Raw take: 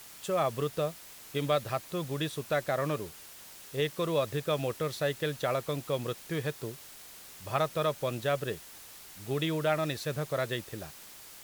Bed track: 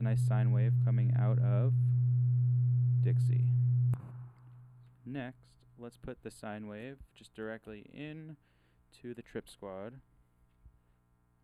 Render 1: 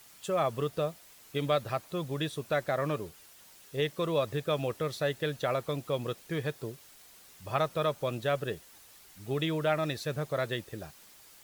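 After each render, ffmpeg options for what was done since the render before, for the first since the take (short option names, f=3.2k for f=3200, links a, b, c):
-af "afftdn=nr=7:nf=-50"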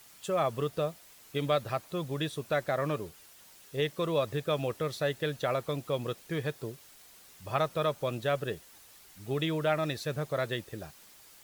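-af anull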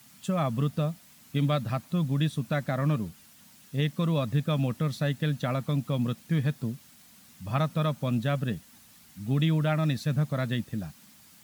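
-af "highpass=84,lowshelf=f=300:t=q:w=3:g=8.5"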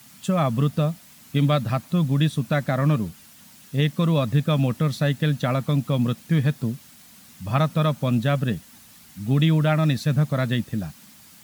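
-af "volume=6dB"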